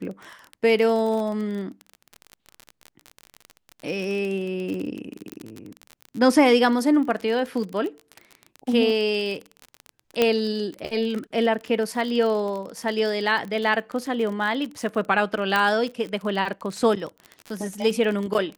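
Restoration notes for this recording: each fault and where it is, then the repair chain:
surface crackle 35 per second −28 dBFS
0:05.32: click −19 dBFS
0:10.22: click −6 dBFS
0:15.56: click −9 dBFS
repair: click removal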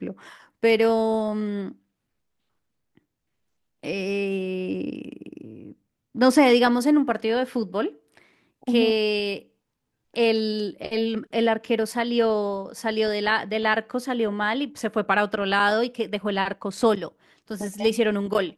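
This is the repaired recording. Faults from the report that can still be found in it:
none of them is left

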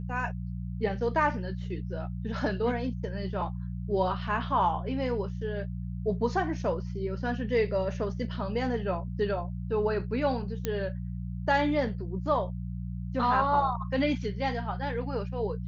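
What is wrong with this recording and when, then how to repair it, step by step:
mains hum 60 Hz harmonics 3 −35 dBFS
0:10.65: click −15 dBFS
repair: click removal
hum removal 60 Hz, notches 3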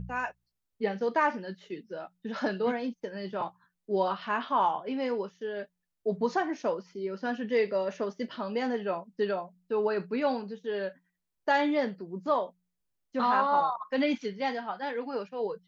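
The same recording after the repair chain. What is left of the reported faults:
none of them is left

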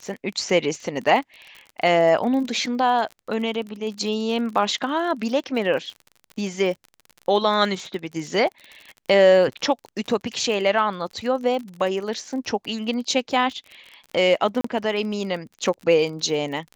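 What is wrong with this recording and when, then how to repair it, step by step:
surface crackle 38 per second −31 dBFS
0:14.61–0:14.64: drop-out 34 ms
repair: click removal
repair the gap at 0:14.61, 34 ms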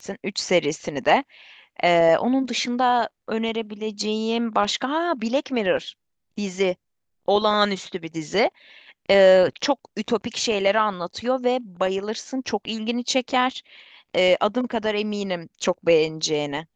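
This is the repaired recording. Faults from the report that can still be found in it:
none of them is left

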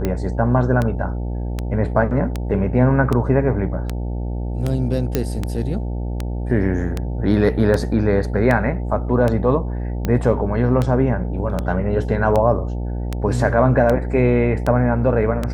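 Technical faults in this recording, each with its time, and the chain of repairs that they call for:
mains buzz 60 Hz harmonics 15 −24 dBFS
scratch tick 78 rpm −9 dBFS
0:05.15: click −5 dBFS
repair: click removal
hum removal 60 Hz, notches 15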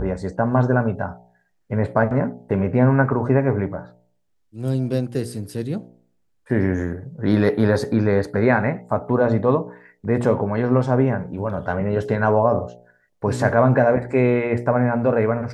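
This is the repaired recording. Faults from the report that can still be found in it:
none of them is left

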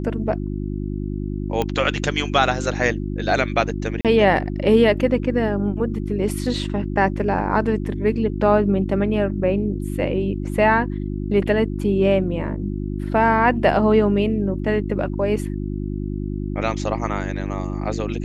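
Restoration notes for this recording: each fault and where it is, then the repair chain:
mains hum 50 Hz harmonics 7 −26 dBFS
0:01.62: click −9 dBFS
0:04.01–0:04.05: drop-out 37 ms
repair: click removal
hum removal 50 Hz, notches 7
repair the gap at 0:04.01, 37 ms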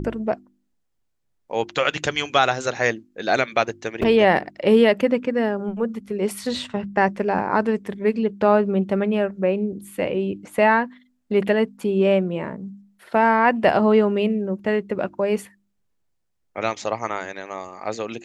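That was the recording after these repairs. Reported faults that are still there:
none of them is left

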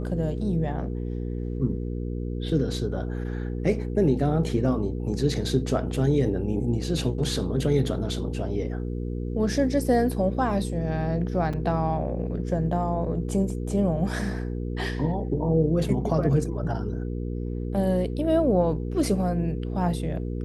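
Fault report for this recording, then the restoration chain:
mains hum 60 Hz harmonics 8 −30 dBFS
0:11.53: drop-out 4.6 ms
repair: hum removal 60 Hz, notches 8
repair the gap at 0:11.53, 4.6 ms

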